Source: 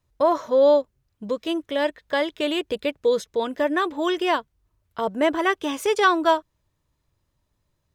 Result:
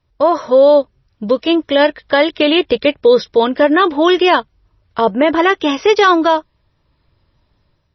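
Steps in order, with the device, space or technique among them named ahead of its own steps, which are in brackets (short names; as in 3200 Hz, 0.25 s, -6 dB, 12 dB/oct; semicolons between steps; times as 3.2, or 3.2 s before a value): low-bitrate web radio (AGC gain up to 7 dB; limiter -8.5 dBFS, peak gain reduction 6 dB; gain +6.5 dB; MP3 24 kbps 22050 Hz)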